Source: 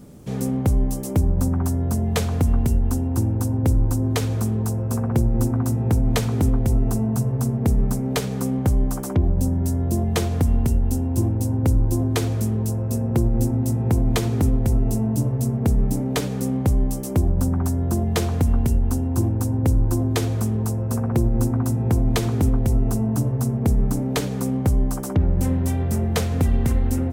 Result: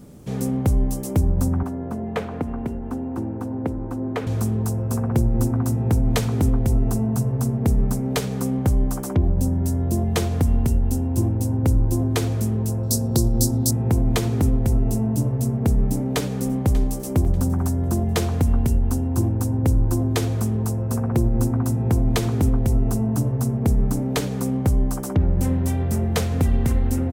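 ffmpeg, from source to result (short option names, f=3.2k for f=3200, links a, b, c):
-filter_complex "[0:a]asettb=1/sr,asplit=3[a][b][c];[a]atrim=end=1.634[d];[b]atrim=start=1.63:end=4.27,asetpts=PTS-STARTPTS,afade=t=in:d=0.004:c=qsin,afade=t=out:st=2.636:d=0.004:c=qsin,acrossover=split=180 2600:gain=0.178 1 0.1[e][f][g];[e][f][g]amix=inputs=3:normalize=0[h];[c]atrim=start=4.266[i];[d][h]acrossfade=d=0.004:c1=hsin:c2=qsin[j];[j][i]acrossfade=d=0.004:c1=qsin:c2=hsin,asettb=1/sr,asplit=3[k][l][m];[k]atrim=end=12.834[n];[l]atrim=start=12.83:end=13.71,asetpts=PTS-STARTPTS,afade=t=in:d=0.004:c=qsin,afade=t=out:st=0.876:d=0.004:c=qsin,highshelf=f=3.2k:t=q:w=3:g=11[o];[m]atrim=start=13.706[p];[n][o]acrossfade=d=0.004:c1=hsin:c2=qsin[q];[q][p]acrossfade=d=0.004:c1=qsin:c2=hsin,asplit=2[r][s];[s]afade=t=in:st=15.86:d=0.01,afade=t=out:st=17.01:d=0.01,aecho=0:1:590|1180|1770:0.16788|0.0503641|0.0151092[t];[r][t]amix=inputs=2:normalize=0"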